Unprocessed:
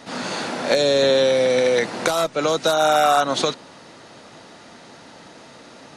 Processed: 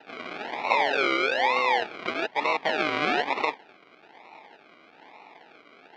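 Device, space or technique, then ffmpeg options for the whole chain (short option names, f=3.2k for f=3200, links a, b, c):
circuit-bent sampling toy: -af "acrusher=samples=39:mix=1:aa=0.000001:lfo=1:lforange=23.4:lforate=1.1,highpass=500,equalizer=f=540:t=q:w=4:g=-7,equalizer=f=870:t=q:w=4:g=7,equalizer=f=2.3k:t=q:w=4:g=7,lowpass=f=4.1k:w=0.5412,lowpass=f=4.1k:w=1.3066,volume=-4dB"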